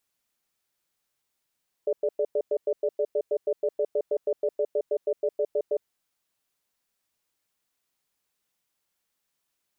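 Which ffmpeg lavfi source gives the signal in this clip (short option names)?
-f lavfi -i "aevalsrc='0.0596*(sin(2*PI*425*t)+sin(2*PI*588*t))*clip(min(mod(t,0.16),0.06-mod(t,0.16))/0.005,0,1)':d=3.97:s=44100"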